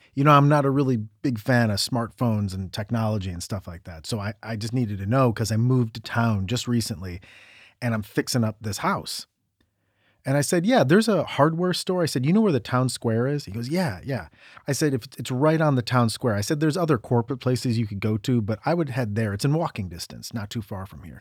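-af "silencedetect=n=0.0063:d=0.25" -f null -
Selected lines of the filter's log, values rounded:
silence_start: 9.24
silence_end: 10.25 | silence_duration: 1.01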